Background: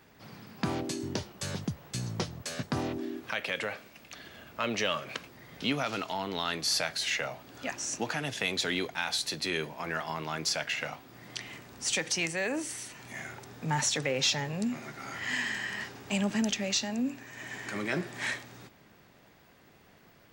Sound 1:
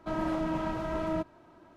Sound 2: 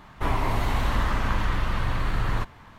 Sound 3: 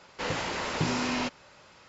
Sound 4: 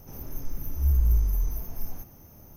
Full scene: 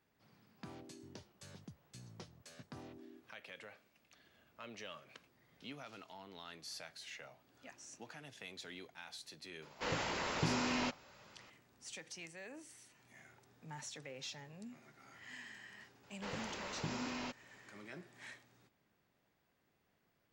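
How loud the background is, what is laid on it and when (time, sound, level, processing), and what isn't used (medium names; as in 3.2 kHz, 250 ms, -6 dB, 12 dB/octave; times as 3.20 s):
background -19.5 dB
9.62 s: add 3 -6.5 dB
16.03 s: add 3 -13 dB
not used: 1, 2, 4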